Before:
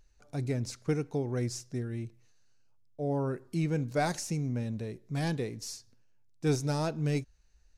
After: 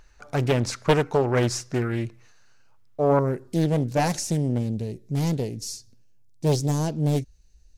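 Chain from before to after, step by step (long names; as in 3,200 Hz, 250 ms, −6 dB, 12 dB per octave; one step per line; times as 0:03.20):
parametric band 1,300 Hz +10 dB 2.2 octaves, from 0:03.19 −5.5 dB, from 0:04.58 −13 dB
highs frequency-modulated by the lows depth 0.74 ms
level +9 dB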